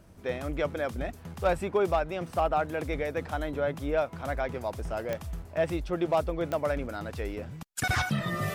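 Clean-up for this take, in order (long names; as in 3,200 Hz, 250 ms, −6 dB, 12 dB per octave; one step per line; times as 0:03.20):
clipped peaks rebuilt −17.5 dBFS
click removal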